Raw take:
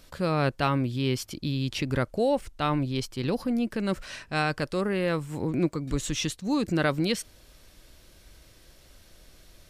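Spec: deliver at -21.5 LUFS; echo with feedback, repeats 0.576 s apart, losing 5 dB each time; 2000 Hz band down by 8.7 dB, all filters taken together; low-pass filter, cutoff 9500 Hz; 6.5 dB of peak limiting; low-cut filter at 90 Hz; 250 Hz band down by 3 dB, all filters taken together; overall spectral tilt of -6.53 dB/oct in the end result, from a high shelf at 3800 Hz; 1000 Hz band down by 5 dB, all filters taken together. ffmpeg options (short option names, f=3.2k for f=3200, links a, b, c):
-af "highpass=90,lowpass=9.5k,equalizer=f=250:t=o:g=-3.5,equalizer=f=1k:t=o:g=-3.5,equalizer=f=2k:t=o:g=-9,highshelf=f=3.8k:g=-8,alimiter=limit=-21.5dB:level=0:latency=1,aecho=1:1:576|1152|1728|2304|2880|3456|4032:0.562|0.315|0.176|0.0988|0.0553|0.031|0.0173,volume=10dB"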